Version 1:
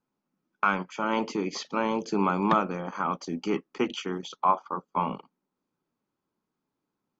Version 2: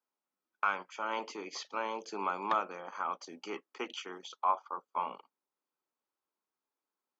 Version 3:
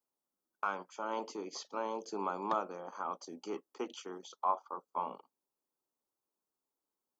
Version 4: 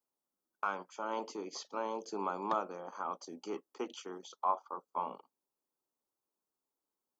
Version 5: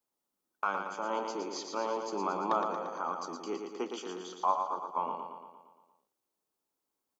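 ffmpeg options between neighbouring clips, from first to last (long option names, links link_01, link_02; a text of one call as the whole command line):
ffmpeg -i in.wav -af "highpass=530,volume=-6dB" out.wav
ffmpeg -i in.wav -af "equalizer=frequency=2200:width=0.83:gain=-14.5,volume=2.5dB" out.wav
ffmpeg -i in.wav -af anull out.wav
ffmpeg -i in.wav -af "aecho=1:1:115|230|345|460|575|690|805|920:0.531|0.308|0.179|0.104|0.0601|0.0348|0.0202|0.0117,volume=3dB" out.wav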